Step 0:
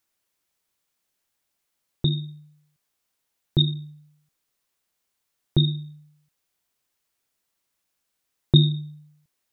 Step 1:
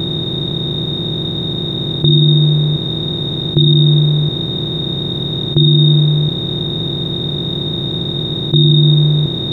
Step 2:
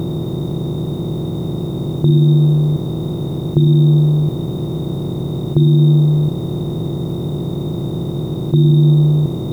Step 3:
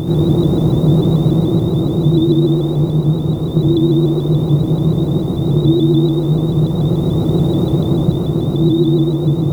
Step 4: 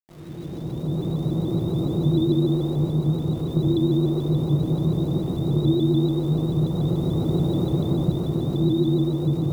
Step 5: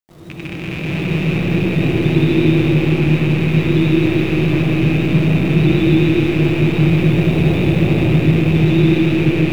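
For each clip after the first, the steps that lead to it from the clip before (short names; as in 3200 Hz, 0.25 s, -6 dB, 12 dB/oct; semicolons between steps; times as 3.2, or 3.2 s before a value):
per-bin compression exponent 0.2; HPF 130 Hz 6 dB/oct; maximiser +12 dB; gain -1 dB
polynomial smoothing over 65 samples; added noise white -51 dBFS
vocal rider within 4 dB 2 s; reverb RT60 1.3 s, pre-delay 70 ms, DRR -6 dB; shaped vibrato saw up 6.9 Hz, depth 100 cents; gain -3.5 dB
opening faded in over 1.93 s; sample gate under -36 dBFS; gain -8 dB
rattling part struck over -31 dBFS, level -21 dBFS; digital reverb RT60 4.7 s, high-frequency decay 0.3×, pre-delay 40 ms, DRR -2 dB; flange 0.21 Hz, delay 9.7 ms, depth 1.8 ms, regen -75%; gain +7.5 dB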